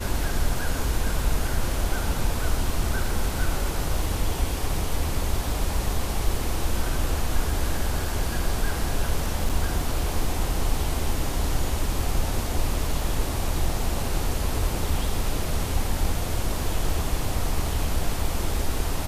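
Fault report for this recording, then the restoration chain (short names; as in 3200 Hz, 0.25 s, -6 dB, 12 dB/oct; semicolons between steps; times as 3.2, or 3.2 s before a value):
9.49–9.5 gap 6.3 ms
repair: interpolate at 9.49, 6.3 ms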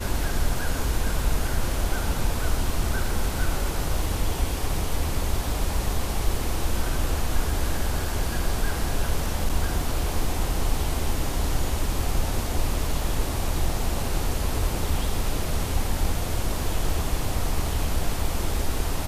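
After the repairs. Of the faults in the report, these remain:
none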